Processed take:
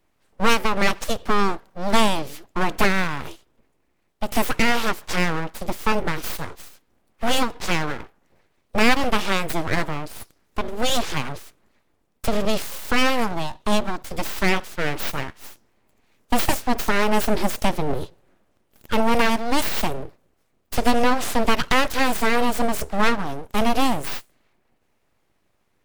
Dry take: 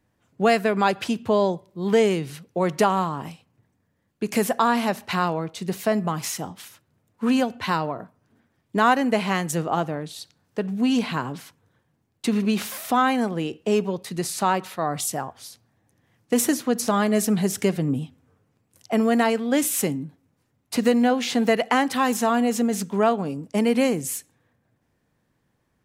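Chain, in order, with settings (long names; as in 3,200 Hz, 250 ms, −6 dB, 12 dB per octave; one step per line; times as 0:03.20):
formants moved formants +3 semitones
full-wave rectification
level +3.5 dB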